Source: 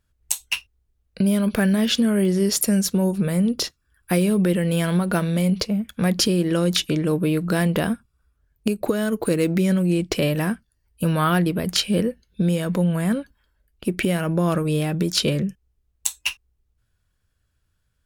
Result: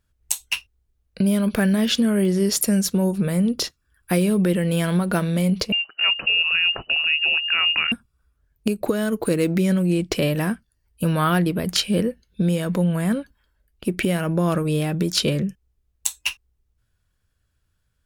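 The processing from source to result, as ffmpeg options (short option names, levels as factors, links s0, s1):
-filter_complex "[0:a]asettb=1/sr,asplit=3[s0][s1][s2];[s0]atrim=end=5.724[s3];[s1]atrim=start=5.72:end=7.92,asetpts=PTS-STARTPTS,afade=t=in:d=0.004:c=qsin,afade=t=out:st=2.196:d=0.004:c=qsin,lowpass=f=2600:t=q:w=0.5098,lowpass=f=2600:t=q:w=0.6013,lowpass=f=2600:t=q:w=0.9,lowpass=f=2600:t=q:w=2.563,afreqshift=-3000[s4];[s2]atrim=start=7.916[s5];[s3][s4]acrossfade=d=0.004:c1=hsin:c2=qsin[s6];[s6][s5]acrossfade=d=0.004:c1=qsin:c2=hsin"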